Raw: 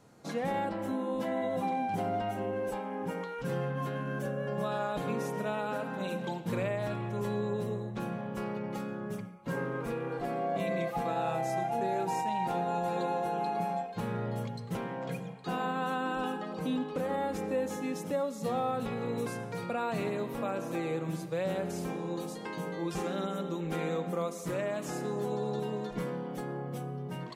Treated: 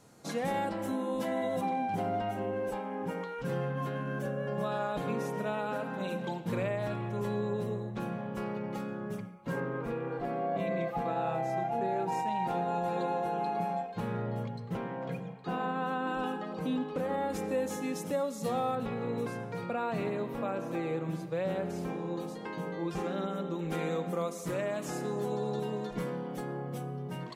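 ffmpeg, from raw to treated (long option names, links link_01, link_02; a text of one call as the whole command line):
ffmpeg -i in.wav -af "asetnsamples=nb_out_samples=441:pad=0,asendcmd='1.61 equalizer g -3;9.6 equalizer g -12;12.12 equalizer g -5.5;14.22 equalizer g -12;16.07 equalizer g -5;17.3 equalizer g 3.5;18.75 equalizer g -8.5;23.59 equalizer g 0.5',equalizer=frequency=10000:width_type=o:width=2.1:gain=6.5" out.wav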